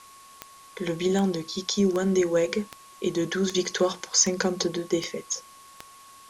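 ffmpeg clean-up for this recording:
-af "adeclick=t=4,bandreject=f=1.1k:w=30,afwtdn=0.0028"

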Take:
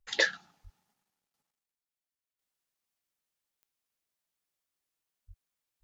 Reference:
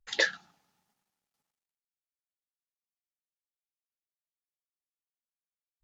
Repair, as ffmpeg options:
-filter_complex "[0:a]adeclick=t=4,asplit=3[a][b][c];[a]afade=t=out:st=0.63:d=0.02[d];[b]highpass=f=140:w=0.5412,highpass=f=140:w=1.3066,afade=t=in:st=0.63:d=0.02,afade=t=out:st=0.75:d=0.02[e];[c]afade=t=in:st=0.75:d=0.02[f];[d][e][f]amix=inputs=3:normalize=0,asplit=3[g][h][i];[g]afade=t=out:st=5.27:d=0.02[j];[h]highpass=f=140:w=0.5412,highpass=f=140:w=1.3066,afade=t=in:st=5.27:d=0.02,afade=t=out:st=5.39:d=0.02[k];[i]afade=t=in:st=5.39:d=0.02[l];[j][k][l]amix=inputs=3:normalize=0,asetnsamples=n=441:p=0,asendcmd='2.39 volume volume -8.5dB',volume=0dB"

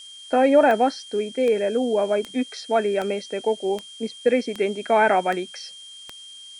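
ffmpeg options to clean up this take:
-af "adeclick=t=4,bandreject=f=3.2k:w=30,afftdn=nr=24:nf=-42"

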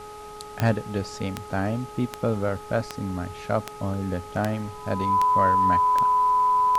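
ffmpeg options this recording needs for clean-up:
-af "adeclick=t=4,bandreject=f=420.4:t=h:w=4,bandreject=f=840.8:t=h:w=4,bandreject=f=1.2612k:t=h:w=4,bandreject=f=1k:w=30,afftdn=nr=30:nf=-40"

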